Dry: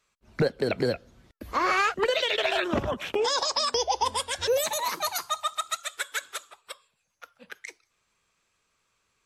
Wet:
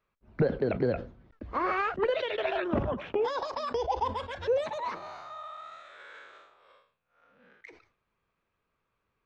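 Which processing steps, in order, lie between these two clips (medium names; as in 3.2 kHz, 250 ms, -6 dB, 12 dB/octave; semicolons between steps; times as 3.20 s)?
4.95–7.61 s: spectral blur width 174 ms; tape spacing loss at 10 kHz 41 dB; decay stretcher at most 120 dB/s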